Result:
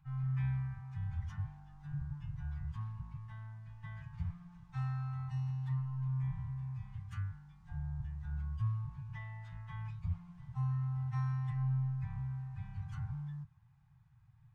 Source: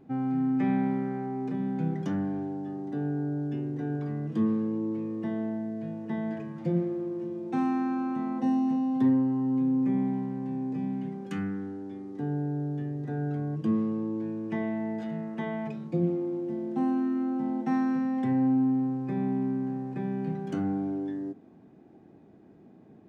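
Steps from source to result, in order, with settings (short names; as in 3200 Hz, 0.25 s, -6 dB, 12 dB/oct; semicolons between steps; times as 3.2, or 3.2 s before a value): octaver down 1 oct, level +1 dB; elliptic band-stop 140–970 Hz, stop band 40 dB; plain phase-vocoder stretch 0.63×; gain -5 dB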